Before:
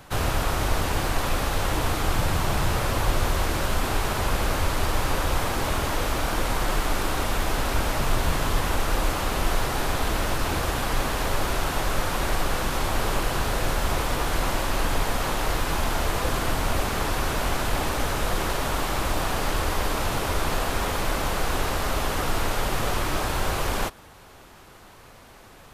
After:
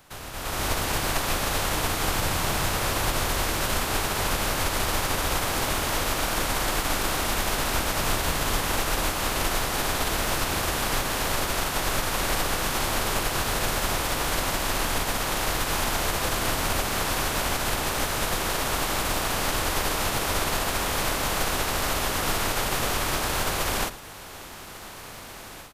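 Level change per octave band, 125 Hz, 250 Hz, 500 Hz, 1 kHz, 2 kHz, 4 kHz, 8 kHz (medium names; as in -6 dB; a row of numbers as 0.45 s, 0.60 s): -4.0 dB, -1.5 dB, -1.5 dB, -0.5 dB, +1.5 dB, +3.0 dB, +5.0 dB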